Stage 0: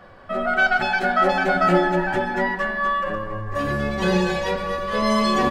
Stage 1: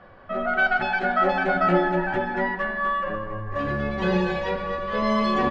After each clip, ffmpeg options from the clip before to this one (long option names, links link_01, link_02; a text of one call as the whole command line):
ffmpeg -i in.wav -af "lowpass=3300,volume=-2.5dB" out.wav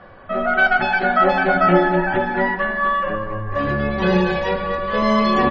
ffmpeg -i in.wav -af "volume=6dB" -ar 48000 -c:a libmp3lame -b:a 32k out.mp3